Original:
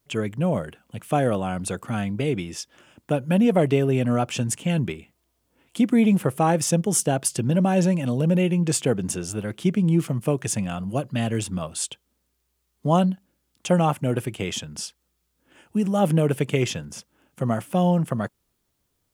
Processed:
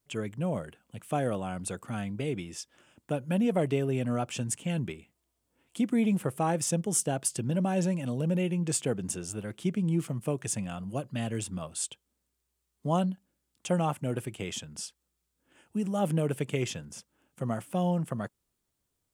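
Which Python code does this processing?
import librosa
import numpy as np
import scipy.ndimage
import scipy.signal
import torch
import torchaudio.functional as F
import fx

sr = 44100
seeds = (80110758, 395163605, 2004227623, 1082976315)

y = fx.peak_eq(x, sr, hz=8300.0, db=4.5, octaves=0.49)
y = F.gain(torch.from_numpy(y), -8.0).numpy()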